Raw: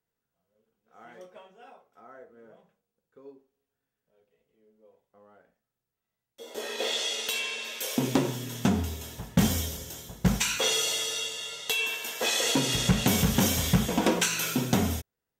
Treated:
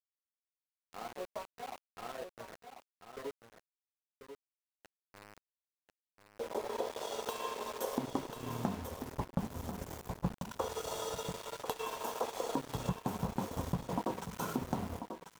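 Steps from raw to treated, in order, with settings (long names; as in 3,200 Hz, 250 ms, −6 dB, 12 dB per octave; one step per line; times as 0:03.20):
high shelf with overshoot 1,500 Hz −13 dB, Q 3
transient designer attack +3 dB, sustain −11 dB
downward compressor 6 to 1, threshold −37 dBFS, peak gain reduction 21 dB
centre clipping without the shift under −46 dBFS
on a send: single-tap delay 1,041 ms −8.5 dB
on the sum: level +3 dB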